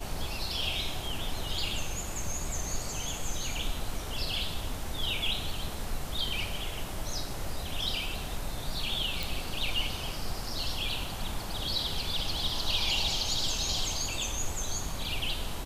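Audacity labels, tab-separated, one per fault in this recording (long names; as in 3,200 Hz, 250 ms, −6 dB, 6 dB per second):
9.230000	9.230000	click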